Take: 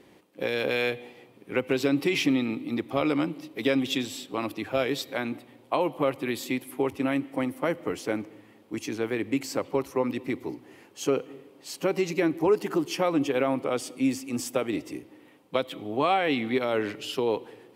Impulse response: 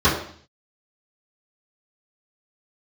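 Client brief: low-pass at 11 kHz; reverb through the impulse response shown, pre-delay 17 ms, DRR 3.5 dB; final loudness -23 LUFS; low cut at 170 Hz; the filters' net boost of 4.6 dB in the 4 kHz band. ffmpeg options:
-filter_complex "[0:a]highpass=170,lowpass=11000,equalizer=f=4000:t=o:g=6,asplit=2[s0][s1];[1:a]atrim=start_sample=2205,adelay=17[s2];[s1][s2]afir=irnorm=-1:irlink=0,volume=0.0596[s3];[s0][s3]amix=inputs=2:normalize=0,volume=1.33"

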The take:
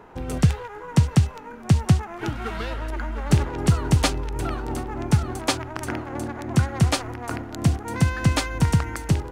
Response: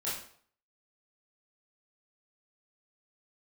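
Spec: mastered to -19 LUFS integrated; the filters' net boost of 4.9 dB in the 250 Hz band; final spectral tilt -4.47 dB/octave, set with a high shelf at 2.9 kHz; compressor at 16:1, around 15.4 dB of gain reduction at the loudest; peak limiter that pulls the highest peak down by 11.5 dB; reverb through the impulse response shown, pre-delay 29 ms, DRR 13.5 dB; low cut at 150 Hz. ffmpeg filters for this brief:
-filter_complex "[0:a]highpass=150,equalizer=f=250:t=o:g=8.5,highshelf=f=2900:g=8.5,acompressor=threshold=0.0447:ratio=16,alimiter=limit=0.0631:level=0:latency=1,asplit=2[s0][s1];[1:a]atrim=start_sample=2205,adelay=29[s2];[s1][s2]afir=irnorm=-1:irlink=0,volume=0.126[s3];[s0][s3]amix=inputs=2:normalize=0,volume=6.31"

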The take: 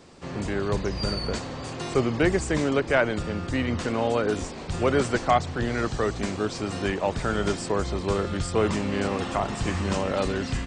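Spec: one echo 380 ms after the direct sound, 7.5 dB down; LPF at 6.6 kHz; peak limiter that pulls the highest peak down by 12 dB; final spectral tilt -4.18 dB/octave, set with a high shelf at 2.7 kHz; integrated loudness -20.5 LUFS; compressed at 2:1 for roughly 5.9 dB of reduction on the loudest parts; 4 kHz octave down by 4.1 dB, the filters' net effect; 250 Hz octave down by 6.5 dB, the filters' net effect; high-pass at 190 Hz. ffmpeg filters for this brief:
-af "highpass=190,lowpass=6600,equalizer=f=250:t=o:g=-7,highshelf=f=2700:g=3,equalizer=f=4000:t=o:g=-7.5,acompressor=threshold=0.0447:ratio=2,alimiter=level_in=1.26:limit=0.0631:level=0:latency=1,volume=0.794,aecho=1:1:380:0.422,volume=5.62"

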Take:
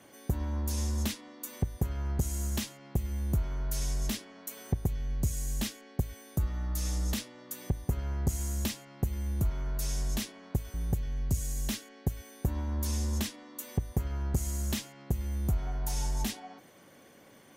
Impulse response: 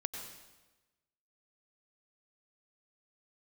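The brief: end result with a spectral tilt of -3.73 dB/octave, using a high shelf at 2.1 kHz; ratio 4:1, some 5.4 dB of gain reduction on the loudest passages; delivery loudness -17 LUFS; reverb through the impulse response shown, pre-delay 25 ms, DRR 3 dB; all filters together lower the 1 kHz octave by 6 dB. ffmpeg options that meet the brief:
-filter_complex "[0:a]equalizer=f=1000:t=o:g=-9,highshelf=f=2100:g=3.5,acompressor=threshold=0.0316:ratio=4,asplit=2[s0][s1];[1:a]atrim=start_sample=2205,adelay=25[s2];[s1][s2]afir=irnorm=-1:irlink=0,volume=0.668[s3];[s0][s3]amix=inputs=2:normalize=0,volume=7.94"

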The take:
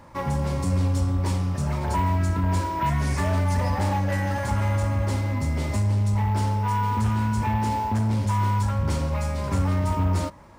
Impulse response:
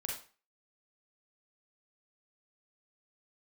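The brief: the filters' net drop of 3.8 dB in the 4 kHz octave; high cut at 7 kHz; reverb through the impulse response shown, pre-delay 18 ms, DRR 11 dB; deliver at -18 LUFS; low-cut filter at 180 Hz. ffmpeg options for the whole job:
-filter_complex "[0:a]highpass=180,lowpass=7000,equalizer=f=4000:t=o:g=-4.5,asplit=2[s0][s1];[1:a]atrim=start_sample=2205,adelay=18[s2];[s1][s2]afir=irnorm=-1:irlink=0,volume=0.251[s3];[s0][s3]amix=inputs=2:normalize=0,volume=3.55"

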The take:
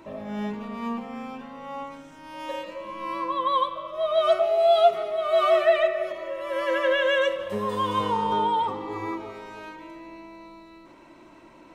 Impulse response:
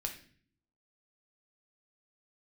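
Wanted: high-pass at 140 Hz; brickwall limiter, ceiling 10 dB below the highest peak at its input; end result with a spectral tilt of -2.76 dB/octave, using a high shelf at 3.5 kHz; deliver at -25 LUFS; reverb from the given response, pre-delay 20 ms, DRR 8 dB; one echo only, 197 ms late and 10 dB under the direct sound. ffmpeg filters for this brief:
-filter_complex "[0:a]highpass=140,highshelf=f=3500:g=-4,alimiter=limit=0.126:level=0:latency=1,aecho=1:1:197:0.316,asplit=2[s0][s1];[1:a]atrim=start_sample=2205,adelay=20[s2];[s1][s2]afir=irnorm=-1:irlink=0,volume=0.398[s3];[s0][s3]amix=inputs=2:normalize=0,volume=1.26"

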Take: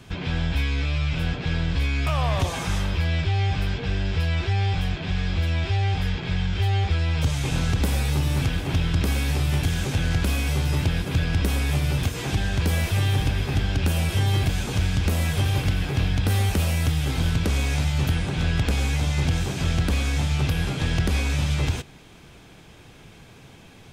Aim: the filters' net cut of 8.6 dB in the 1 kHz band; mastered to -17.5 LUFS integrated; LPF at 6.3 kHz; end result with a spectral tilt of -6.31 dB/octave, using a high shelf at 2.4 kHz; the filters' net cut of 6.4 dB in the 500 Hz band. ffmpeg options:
-af "lowpass=6300,equalizer=f=500:t=o:g=-6,equalizer=f=1000:t=o:g=-8.5,highshelf=f=2400:g=-6,volume=2.37"

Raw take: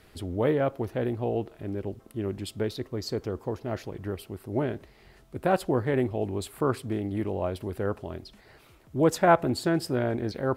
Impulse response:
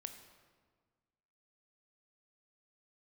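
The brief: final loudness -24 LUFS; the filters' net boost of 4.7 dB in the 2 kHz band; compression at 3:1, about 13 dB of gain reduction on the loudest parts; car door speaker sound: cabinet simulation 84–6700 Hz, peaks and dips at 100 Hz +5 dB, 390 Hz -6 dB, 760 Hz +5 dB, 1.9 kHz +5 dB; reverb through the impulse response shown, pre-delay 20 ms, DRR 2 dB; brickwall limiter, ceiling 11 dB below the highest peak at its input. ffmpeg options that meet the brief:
-filter_complex "[0:a]equalizer=f=2000:t=o:g=3.5,acompressor=threshold=0.0251:ratio=3,alimiter=level_in=1.88:limit=0.0631:level=0:latency=1,volume=0.531,asplit=2[s0][s1];[1:a]atrim=start_sample=2205,adelay=20[s2];[s1][s2]afir=irnorm=-1:irlink=0,volume=1.26[s3];[s0][s3]amix=inputs=2:normalize=0,highpass=84,equalizer=f=100:t=q:w=4:g=5,equalizer=f=390:t=q:w=4:g=-6,equalizer=f=760:t=q:w=4:g=5,equalizer=f=1900:t=q:w=4:g=5,lowpass=f=6700:w=0.5412,lowpass=f=6700:w=1.3066,volume=4.47"

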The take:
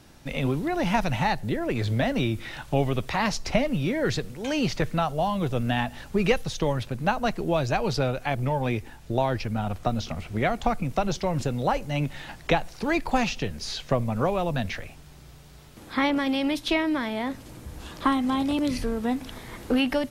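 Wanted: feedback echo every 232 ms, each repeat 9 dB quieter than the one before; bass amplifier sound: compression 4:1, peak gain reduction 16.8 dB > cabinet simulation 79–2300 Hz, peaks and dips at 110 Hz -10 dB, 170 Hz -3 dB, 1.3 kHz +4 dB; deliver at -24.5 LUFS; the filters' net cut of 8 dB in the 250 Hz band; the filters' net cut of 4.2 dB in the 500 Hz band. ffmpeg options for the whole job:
-af "equalizer=f=250:t=o:g=-8,equalizer=f=500:t=o:g=-3.5,aecho=1:1:232|464|696|928:0.355|0.124|0.0435|0.0152,acompressor=threshold=0.0112:ratio=4,highpass=f=79:w=0.5412,highpass=f=79:w=1.3066,equalizer=f=110:t=q:w=4:g=-10,equalizer=f=170:t=q:w=4:g=-3,equalizer=f=1300:t=q:w=4:g=4,lowpass=f=2300:w=0.5412,lowpass=f=2300:w=1.3066,volume=8.41"

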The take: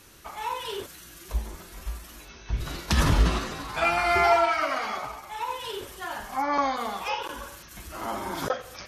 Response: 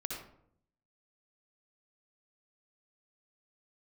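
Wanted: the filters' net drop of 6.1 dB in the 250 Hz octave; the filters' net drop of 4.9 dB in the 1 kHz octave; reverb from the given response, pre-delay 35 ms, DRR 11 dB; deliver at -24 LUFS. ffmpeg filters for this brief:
-filter_complex "[0:a]equalizer=f=250:t=o:g=-8.5,equalizer=f=1000:t=o:g=-6.5,asplit=2[s0][s1];[1:a]atrim=start_sample=2205,adelay=35[s2];[s1][s2]afir=irnorm=-1:irlink=0,volume=0.251[s3];[s0][s3]amix=inputs=2:normalize=0,volume=2"

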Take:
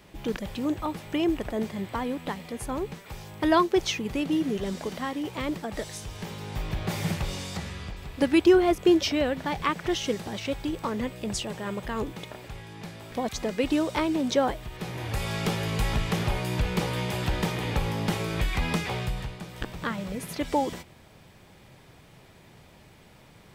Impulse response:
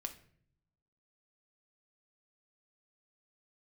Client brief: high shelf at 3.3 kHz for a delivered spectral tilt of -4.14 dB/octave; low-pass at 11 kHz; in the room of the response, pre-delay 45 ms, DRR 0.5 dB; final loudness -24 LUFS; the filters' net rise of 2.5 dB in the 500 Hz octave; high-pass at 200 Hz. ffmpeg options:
-filter_complex "[0:a]highpass=200,lowpass=11000,equalizer=f=500:t=o:g=4,highshelf=f=3300:g=-4.5,asplit=2[s0][s1];[1:a]atrim=start_sample=2205,adelay=45[s2];[s1][s2]afir=irnorm=-1:irlink=0,volume=1.19[s3];[s0][s3]amix=inputs=2:normalize=0,volume=1.12"

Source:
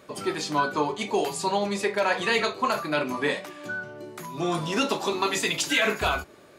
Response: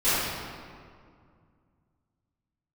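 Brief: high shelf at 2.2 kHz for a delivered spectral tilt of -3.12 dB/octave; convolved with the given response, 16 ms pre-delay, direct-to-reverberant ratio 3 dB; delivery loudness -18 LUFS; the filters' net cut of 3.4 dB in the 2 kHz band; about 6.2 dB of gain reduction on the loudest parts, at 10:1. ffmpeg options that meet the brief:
-filter_complex "[0:a]equalizer=f=2000:t=o:g=-7.5,highshelf=f=2200:g=5,acompressor=threshold=0.0501:ratio=10,asplit=2[s0][s1];[1:a]atrim=start_sample=2205,adelay=16[s2];[s1][s2]afir=irnorm=-1:irlink=0,volume=0.106[s3];[s0][s3]amix=inputs=2:normalize=0,volume=3.76"

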